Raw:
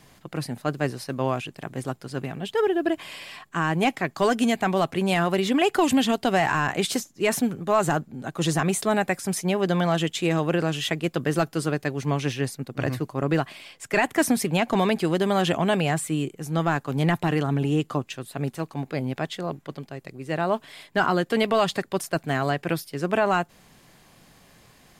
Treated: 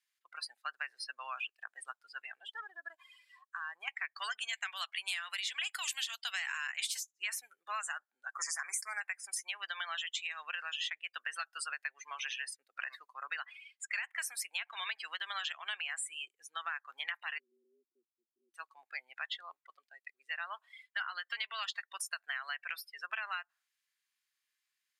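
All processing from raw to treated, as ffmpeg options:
-filter_complex "[0:a]asettb=1/sr,asplit=3[s0][s1][s2];[s0]atrim=end=2.424[s3];[s1]atrim=start=2.42:end=3.88,asetpts=PTS-STARTPTS,afade=t=in:d=0.004:c=qsin,afade=t=out:st=1.456:d=0.004:c=qsin,equalizer=f=2600:t=o:w=1:g=-7.5,acompressor=threshold=0.0562:ratio=4:attack=3.2:release=140:knee=1:detection=peak,asoftclip=type=hard:threshold=0.0708[s4];[s2]atrim=start=3.876[s5];[s3][s4]acrossfade=d=0.004:c1=hsin:c2=qsin[s6];[s6][s5]acrossfade=d=0.004:c1=qsin:c2=hsin,asettb=1/sr,asplit=3[s7][s8][s9];[s7]atrim=end=4.534[s10];[s8]atrim=start=4.53:end=7.08,asetpts=PTS-STARTPTS,afade=t=in:d=0.004:c=qsin,afade=t=out:st=2.546:d=0.004:c=qsin,highpass=200,agate=range=0.0224:threshold=0.0158:ratio=3:release=100:detection=peak,highshelf=f=2200:g=9[s11];[s9]atrim=start=7.076[s12];[s10][s11]acrossfade=d=0.004:c1=hsin:c2=qsin[s13];[s13][s12]acrossfade=d=0.004:c1=qsin:c2=hsin,asettb=1/sr,asplit=3[s14][s15][s16];[s14]atrim=end=8.324[s17];[s15]atrim=start=8.32:end=9.01,asetpts=PTS-STARTPTS,afade=t=in:d=0.004:c=qsin,afade=t=out:st=0.686:d=0.004:c=qsin,asoftclip=type=hard:threshold=0.133,acontrast=23,asuperstop=centerf=3300:order=12:qfactor=1.5[s18];[s16]atrim=start=9.006[s19];[s17][s18]acrossfade=d=0.004:c1=hsin:c2=qsin[s20];[s20][s19]acrossfade=d=0.004:c1=qsin:c2=hsin,asettb=1/sr,asplit=3[s21][s22][s23];[s21]atrim=end=17.384[s24];[s22]atrim=start=17.38:end=18.54,asetpts=PTS-STARTPTS,afade=t=in:d=0.004:c=qsin,afade=t=out:st=1.156:d=0.004:c=qsin,afreqshift=100,asuperpass=centerf=250:order=12:qfactor=1.1[s25];[s23]atrim=start=18.536[s26];[s24][s25]acrossfade=d=0.004:c1=hsin:c2=qsin[s27];[s27][s26]acrossfade=d=0.004:c1=qsin:c2=hsin,afftdn=nr=30:nf=-35,highpass=f=1500:w=0.5412,highpass=f=1500:w=1.3066,acompressor=threshold=0.0126:ratio=6,volume=1.33"

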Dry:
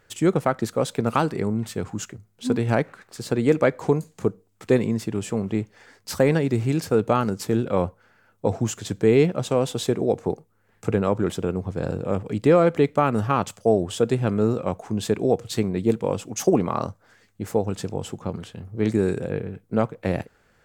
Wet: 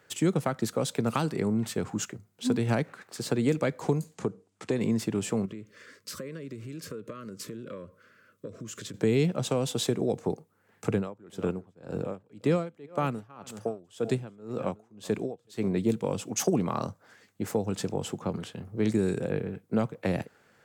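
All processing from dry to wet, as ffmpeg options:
-filter_complex "[0:a]asettb=1/sr,asplit=3[s0][s1][s2];[s0]atrim=end=4.154[s3];[s1]atrim=start=4.15:end=4.81,asetpts=PTS-STARTPTS,afade=t=in:d=0.004:c=qsin,afade=t=out:st=0.656:d=0.004:c=qsin,lowpass=f=9600:w=0.5412,lowpass=f=9600:w=1.3066,acompressor=threshold=0.0708:ratio=2:attack=3.2:release=140:knee=1:detection=peak[s4];[s2]atrim=start=4.806[s5];[s3][s4]acrossfade=d=0.004:c1=hsin:c2=qsin[s6];[s6][s5]acrossfade=d=0.004:c1=qsin:c2=hsin,asettb=1/sr,asplit=3[s7][s8][s9];[s7]atrim=end=5.454[s10];[s8]atrim=start=5.45:end=8.94,asetpts=PTS-STARTPTS,afade=t=in:d=0.004:c=qsin,afade=t=out:st=3.486:d=0.004:c=qsin,acompressor=threshold=0.0178:ratio=8:attack=3.2:release=140:knee=1:detection=peak,asuperstop=centerf=800:order=8:qfactor=2[s11];[s9]atrim=start=8.936[s12];[s10][s11]acrossfade=d=0.004:c1=hsin:c2=qsin[s13];[s13][s12]acrossfade=d=0.004:c1=qsin:c2=hsin,asettb=1/sr,asplit=3[s14][s15][s16];[s14]atrim=end=10.954[s17];[s15]atrim=start=10.95:end=15.68,asetpts=PTS-STARTPTS,afade=t=in:d=0.004:c=qsin,afade=t=out:st=4.726:d=0.004:c=qsin,aecho=1:1:374:0.126,atrim=end_sample=208593,aeval=exprs='val(0)*pow(10,-29*(0.5-0.5*cos(2*PI*1.9*n/s))/20)':c=same[s18];[s16]atrim=start=15.676[s19];[s17][s18]acrossfade=d=0.004:c1=hsin:c2=qsin[s20];[s20][s19]acrossfade=d=0.004:c1=qsin:c2=hsin,highpass=130,acrossover=split=210|3000[s21][s22][s23];[s22]acompressor=threshold=0.0447:ratio=4[s24];[s21][s24][s23]amix=inputs=3:normalize=0"

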